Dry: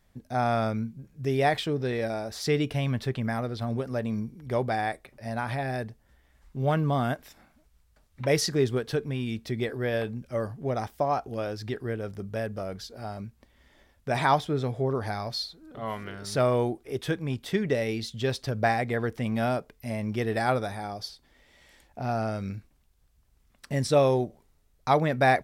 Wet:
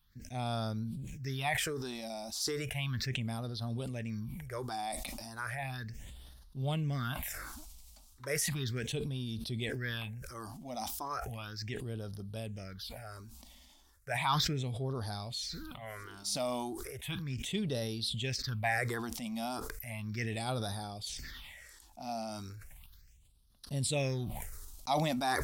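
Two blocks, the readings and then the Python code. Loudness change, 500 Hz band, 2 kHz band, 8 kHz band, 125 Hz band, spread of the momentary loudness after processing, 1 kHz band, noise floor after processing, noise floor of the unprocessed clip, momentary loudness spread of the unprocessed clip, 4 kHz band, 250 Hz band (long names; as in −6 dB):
−8.0 dB, −13.0 dB, −6.0 dB, +1.5 dB, −6.5 dB, 14 LU, −9.5 dB, −60 dBFS, −65 dBFS, 12 LU, −1.0 dB, −8.5 dB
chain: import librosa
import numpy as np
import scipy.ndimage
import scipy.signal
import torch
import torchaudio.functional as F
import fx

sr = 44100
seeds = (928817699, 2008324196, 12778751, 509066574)

y = fx.tone_stack(x, sr, knobs='5-5-5')
y = fx.phaser_stages(y, sr, stages=6, low_hz=110.0, high_hz=2200.0, hz=0.35, feedback_pct=25)
y = fx.sustainer(y, sr, db_per_s=24.0)
y = y * 10.0 ** (8.0 / 20.0)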